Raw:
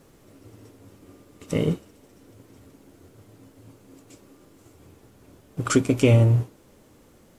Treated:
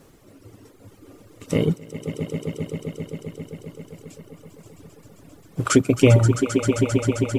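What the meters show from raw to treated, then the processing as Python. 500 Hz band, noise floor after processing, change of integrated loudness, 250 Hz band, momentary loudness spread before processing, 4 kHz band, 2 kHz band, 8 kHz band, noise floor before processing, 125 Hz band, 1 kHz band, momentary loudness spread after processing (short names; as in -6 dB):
+5.0 dB, -52 dBFS, 0.0 dB, +5.0 dB, 17 LU, +4.5 dB, +4.5 dB, +5.5 dB, -55 dBFS, +1.5 dB, +4.5 dB, 21 LU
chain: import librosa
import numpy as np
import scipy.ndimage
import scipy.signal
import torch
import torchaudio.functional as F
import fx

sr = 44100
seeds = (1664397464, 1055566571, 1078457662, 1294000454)

y = fx.echo_swell(x, sr, ms=132, loudest=5, wet_db=-9.0)
y = fx.dereverb_blind(y, sr, rt60_s=2.0)
y = y * 10.0 ** (3.5 / 20.0)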